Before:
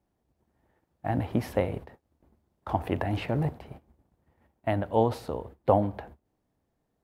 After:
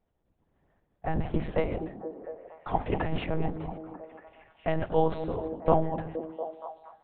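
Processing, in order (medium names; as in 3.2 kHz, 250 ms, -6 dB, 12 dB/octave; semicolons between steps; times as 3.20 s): chunks repeated in reverse 119 ms, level -11.5 dB; monotone LPC vocoder at 8 kHz 160 Hz; repeats whose band climbs or falls 235 ms, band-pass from 220 Hz, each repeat 0.7 oct, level -5 dB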